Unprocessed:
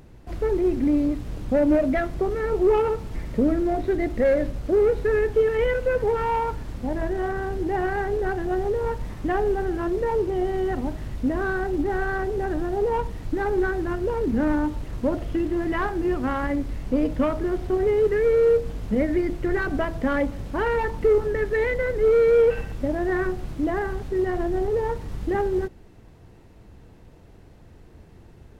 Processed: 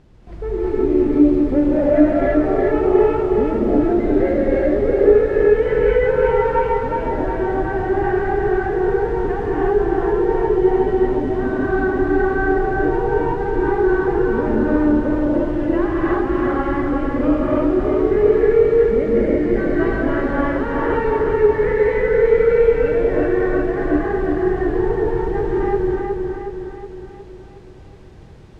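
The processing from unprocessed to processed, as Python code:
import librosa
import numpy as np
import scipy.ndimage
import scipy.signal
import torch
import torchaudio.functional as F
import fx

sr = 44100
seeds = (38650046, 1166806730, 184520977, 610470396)

p1 = fx.high_shelf(x, sr, hz=3600.0, db=-10.0)
p2 = fx.quant_dither(p1, sr, seeds[0], bits=10, dither='none')
p3 = fx.air_absorb(p2, sr, metres=73.0)
p4 = p3 + fx.echo_feedback(p3, sr, ms=366, feedback_pct=54, wet_db=-4, dry=0)
p5 = fx.rev_gated(p4, sr, seeds[1], gate_ms=370, shape='rising', drr_db=-7.0)
y = p5 * librosa.db_to_amplitude(-3.0)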